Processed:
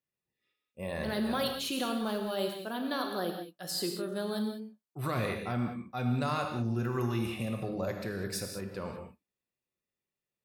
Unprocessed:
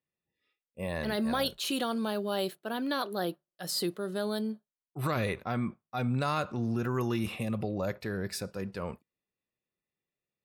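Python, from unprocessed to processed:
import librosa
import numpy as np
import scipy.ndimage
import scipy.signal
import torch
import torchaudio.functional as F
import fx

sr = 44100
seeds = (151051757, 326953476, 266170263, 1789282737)

y = fx.zero_step(x, sr, step_db=-45.5, at=(1.78, 2.18))
y = fx.high_shelf(y, sr, hz=5100.0, db=5.0, at=(7.89, 8.56))
y = fx.rev_gated(y, sr, seeds[0], gate_ms=220, shape='flat', drr_db=3.5)
y = F.gain(torch.from_numpy(y), -3.0).numpy()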